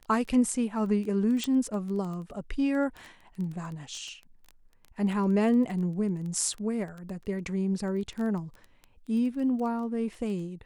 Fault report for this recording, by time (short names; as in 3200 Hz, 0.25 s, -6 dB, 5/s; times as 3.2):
crackle 11/s -34 dBFS
1.44 pop -17 dBFS